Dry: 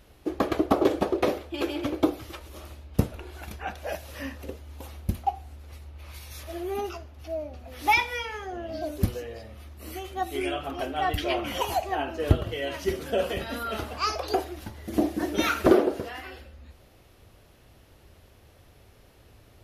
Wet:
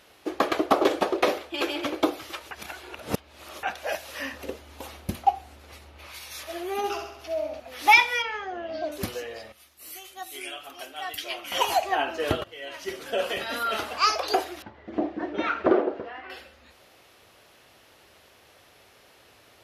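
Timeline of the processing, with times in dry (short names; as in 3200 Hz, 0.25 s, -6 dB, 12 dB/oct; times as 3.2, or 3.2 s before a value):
0.69–1.77 short-mantissa float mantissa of 8-bit
2.51–3.63 reverse
4.33–6.07 low shelf 500 Hz +6.5 dB
6.77–7.6 flutter echo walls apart 11.4 m, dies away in 0.75 s
8.22–8.92 air absorption 150 m
9.52–11.52 pre-emphasis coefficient 0.8
12.44–13.59 fade in linear, from -16.5 dB
14.62–16.3 tape spacing loss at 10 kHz 44 dB
whole clip: HPF 910 Hz 6 dB/oct; high shelf 10000 Hz -7.5 dB; gain +7.5 dB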